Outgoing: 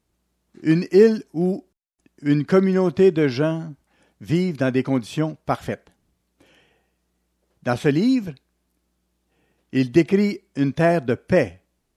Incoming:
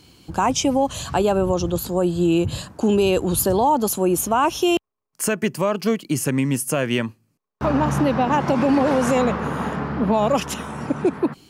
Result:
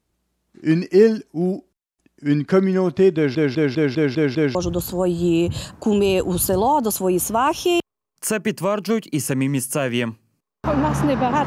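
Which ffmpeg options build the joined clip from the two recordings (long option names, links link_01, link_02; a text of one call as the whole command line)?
ffmpeg -i cue0.wav -i cue1.wav -filter_complex "[0:a]apad=whole_dur=11.46,atrim=end=11.46,asplit=7[link_01][link_02][link_03][link_04][link_05][link_06][link_07];[link_01]atrim=end=3.352[link_08];[link_02]atrim=start=3.148:end=3.352[link_09];[link_03]atrim=start=3.148:end=3.352[link_10];[link_04]atrim=start=3.148:end=3.352[link_11];[link_05]atrim=start=3.148:end=3.352[link_12];[link_06]atrim=start=3.148:end=3.352[link_13];[link_07]atrim=start=3.148:end=3.352[link_14];[1:a]atrim=start=1.518:end=8.43[link_15];[link_08][link_09]acrossfade=duration=0.004:curve1=hsin:curve2=hsin[link_16];[link_16][link_10]acrossfade=duration=0.004:curve1=hsin:curve2=hsin[link_17];[link_17][link_11]acrossfade=duration=0.004:curve1=hsin:curve2=hsin[link_18];[link_18][link_12]acrossfade=duration=0.004:curve1=hsin:curve2=hsin[link_19];[link_19][link_13]acrossfade=duration=0.004:curve1=hsin:curve2=hsin[link_20];[link_20][link_14]acrossfade=duration=0.004:curve1=hsin:curve2=hsin[link_21];[link_21][link_15]acrossfade=duration=0.004:curve1=hsin:curve2=hsin" out.wav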